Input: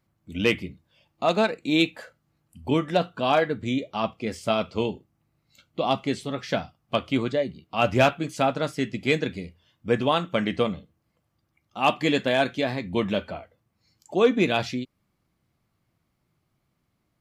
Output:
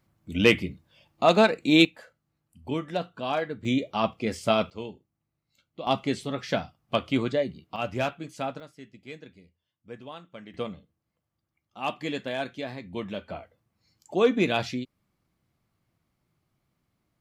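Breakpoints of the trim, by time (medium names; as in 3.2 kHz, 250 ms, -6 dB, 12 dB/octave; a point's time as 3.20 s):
+3 dB
from 1.85 s -7 dB
from 3.65 s +1 dB
from 4.70 s -11 dB
from 5.87 s -1 dB
from 7.76 s -9 dB
from 8.60 s -19.5 dB
from 10.54 s -9 dB
from 13.30 s -2 dB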